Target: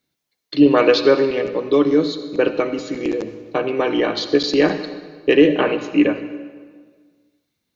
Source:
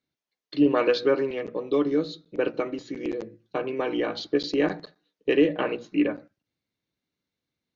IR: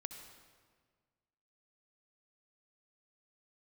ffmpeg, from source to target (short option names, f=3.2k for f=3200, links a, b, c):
-filter_complex "[0:a]asplit=2[a][b];[1:a]atrim=start_sample=2205,highshelf=f=4.7k:g=10.5[c];[b][c]afir=irnorm=-1:irlink=0,volume=4.5dB[d];[a][d]amix=inputs=2:normalize=0,volume=1.5dB"